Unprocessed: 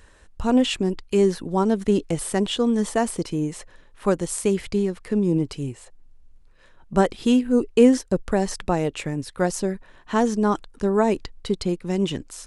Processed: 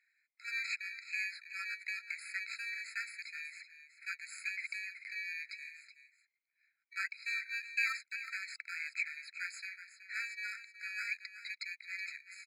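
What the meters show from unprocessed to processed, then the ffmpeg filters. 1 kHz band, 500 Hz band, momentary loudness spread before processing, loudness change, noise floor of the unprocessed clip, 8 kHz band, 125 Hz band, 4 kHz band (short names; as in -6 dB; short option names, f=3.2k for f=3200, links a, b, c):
-25.5 dB, under -40 dB, 9 LU, -16.5 dB, -52 dBFS, -19.0 dB, under -40 dB, -14.0 dB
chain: -filter_complex "[0:a]agate=range=-11dB:threshold=-46dB:ratio=16:detection=peak,asplit=2[a][b];[b]acrusher=samples=21:mix=1:aa=0.000001,volume=-6dB[c];[a][c]amix=inputs=2:normalize=0,asplit=3[d][e][f];[d]bandpass=f=270:t=q:w=8,volume=0dB[g];[e]bandpass=f=2.29k:t=q:w=8,volume=-6dB[h];[f]bandpass=f=3.01k:t=q:w=8,volume=-9dB[i];[g][h][i]amix=inputs=3:normalize=0,asoftclip=type=hard:threshold=-10.5dB,aecho=1:1:374:0.251,afftfilt=real='re*eq(mod(floor(b*sr/1024/1300),2),1)':imag='im*eq(mod(floor(b*sr/1024/1300),2),1)':win_size=1024:overlap=0.75,volume=10.5dB"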